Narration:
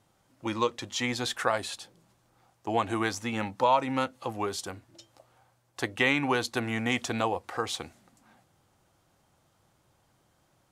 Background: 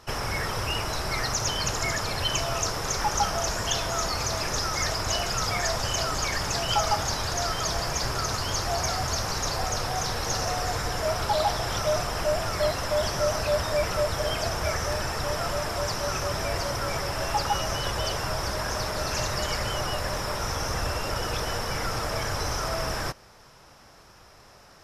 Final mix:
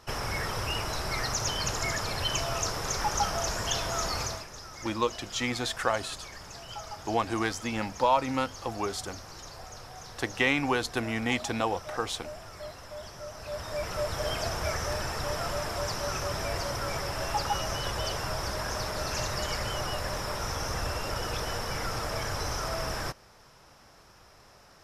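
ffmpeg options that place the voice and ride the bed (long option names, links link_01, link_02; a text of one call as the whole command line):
ffmpeg -i stem1.wav -i stem2.wav -filter_complex "[0:a]adelay=4400,volume=-0.5dB[link_01];[1:a]volume=10dB,afade=type=out:start_time=4.2:duration=0.26:silence=0.211349,afade=type=in:start_time=13.35:duration=0.94:silence=0.223872[link_02];[link_01][link_02]amix=inputs=2:normalize=0" out.wav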